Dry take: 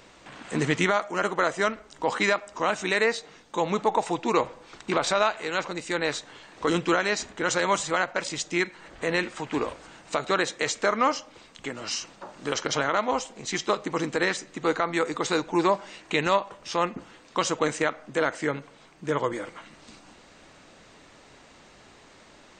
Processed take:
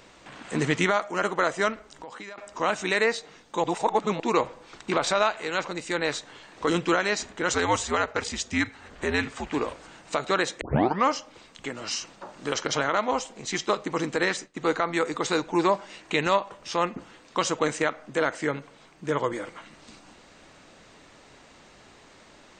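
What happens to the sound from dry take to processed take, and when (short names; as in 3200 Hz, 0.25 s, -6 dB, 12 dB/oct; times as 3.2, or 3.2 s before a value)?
1.89–2.38 compressor 5:1, threshold -39 dBFS
3.64–4.2 reverse
7.53–9.52 frequency shift -87 Hz
10.61 tape start 0.42 s
13.49–15.9 expander -42 dBFS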